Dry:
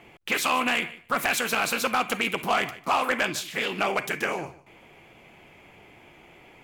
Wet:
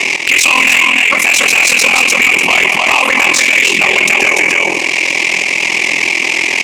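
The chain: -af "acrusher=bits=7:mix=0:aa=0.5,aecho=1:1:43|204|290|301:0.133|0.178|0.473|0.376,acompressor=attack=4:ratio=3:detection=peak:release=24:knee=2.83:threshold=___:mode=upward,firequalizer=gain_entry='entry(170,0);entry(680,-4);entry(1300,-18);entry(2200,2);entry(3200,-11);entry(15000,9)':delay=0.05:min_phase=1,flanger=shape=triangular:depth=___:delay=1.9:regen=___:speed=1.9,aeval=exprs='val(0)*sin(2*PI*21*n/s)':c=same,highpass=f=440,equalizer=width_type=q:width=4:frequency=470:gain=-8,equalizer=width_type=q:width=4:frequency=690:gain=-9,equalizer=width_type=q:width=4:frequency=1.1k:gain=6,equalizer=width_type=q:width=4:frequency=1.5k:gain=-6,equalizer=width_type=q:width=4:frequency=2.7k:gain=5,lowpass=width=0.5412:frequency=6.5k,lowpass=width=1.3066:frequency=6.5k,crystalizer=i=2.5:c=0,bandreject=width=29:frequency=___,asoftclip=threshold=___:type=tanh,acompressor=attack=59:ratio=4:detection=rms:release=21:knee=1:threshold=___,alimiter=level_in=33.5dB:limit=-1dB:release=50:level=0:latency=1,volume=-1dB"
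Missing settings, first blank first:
-27dB, 8.3, 80, 4.4k, -30dB, -45dB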